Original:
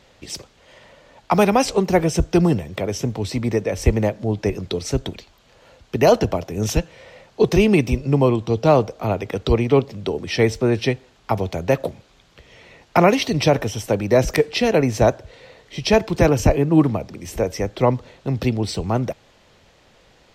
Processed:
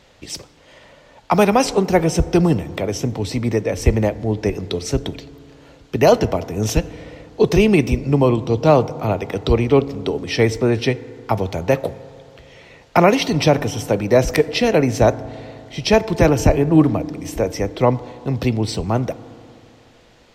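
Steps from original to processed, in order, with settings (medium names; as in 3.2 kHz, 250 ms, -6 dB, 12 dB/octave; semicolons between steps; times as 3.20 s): FDN reverb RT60 2.7 s, high-frequency decay 0.25×, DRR 16 dB; trim +1.5 dB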